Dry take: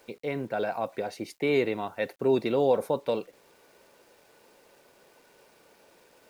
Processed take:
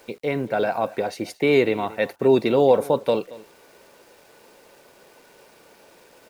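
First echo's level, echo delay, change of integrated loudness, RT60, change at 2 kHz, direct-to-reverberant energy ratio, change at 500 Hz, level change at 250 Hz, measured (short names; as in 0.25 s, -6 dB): -19.5 dB, 0.228 s, +7.0 dB, none, +7.0 dB, none, +7.0 dB, +7.0 dB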